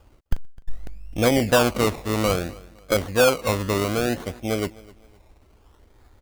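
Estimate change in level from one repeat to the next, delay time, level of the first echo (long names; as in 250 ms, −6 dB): −9.5 dB, 257 ms, −22.0 dB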